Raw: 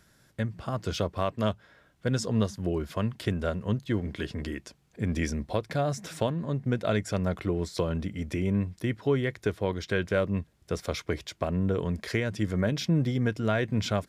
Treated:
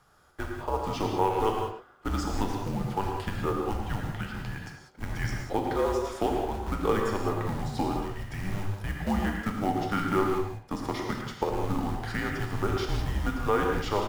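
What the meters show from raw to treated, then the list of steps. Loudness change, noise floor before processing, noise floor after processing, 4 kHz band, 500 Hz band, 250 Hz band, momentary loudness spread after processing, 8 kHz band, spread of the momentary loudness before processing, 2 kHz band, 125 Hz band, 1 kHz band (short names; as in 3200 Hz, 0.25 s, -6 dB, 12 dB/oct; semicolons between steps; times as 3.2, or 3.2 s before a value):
-0.5 dB, -65 dBFS, -55 dBFS, -2.0 dB, -0.5 dB, -2.0 dB, 9 LU, -2.5 dB, 7 LU, 0.0 dB, -4.0 dB, +7.5 dB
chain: short-mantissa float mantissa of 2-bit; bell 1000 Hz +14.5 dB 1.4 oct; speakerphone echo 0.11 s, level -9 dB; non-linear reverb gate 0.22 s flat, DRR 0.5 dB; frequency shift -200 Hz; gain -7 dB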